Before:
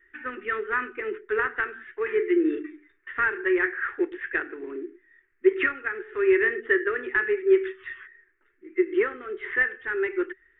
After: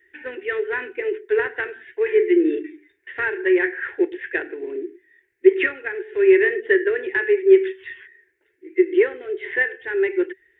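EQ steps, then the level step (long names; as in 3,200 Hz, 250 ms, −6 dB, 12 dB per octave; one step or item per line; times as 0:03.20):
high-pass filter 100 Hz 12 dB per octave
dynamic equaliser 1,200 Hz, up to +4 dB, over −37 dBFS, Q 1.7
phaser with its sweep stopped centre 510 Hz, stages 4
+8.0 dB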